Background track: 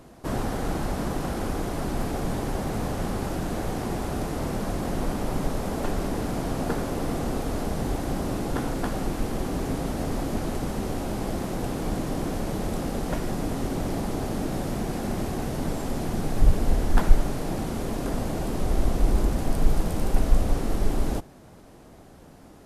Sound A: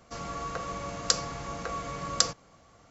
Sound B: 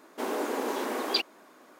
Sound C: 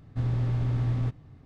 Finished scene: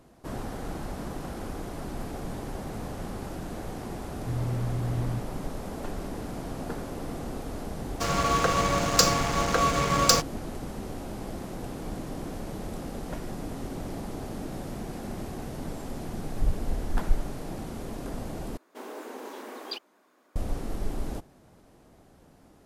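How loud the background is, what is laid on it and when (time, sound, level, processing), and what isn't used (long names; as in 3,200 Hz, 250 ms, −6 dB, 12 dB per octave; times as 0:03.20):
background track −7.5 dB
0:04.10: mix in C −3.5 dB
0:07.89: mix in A −6.5 dB + leveller curve on the samples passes 5
0:18.57: overwrite with B −9.5 dB + wow of a warped record 78 rpm, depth 100 cents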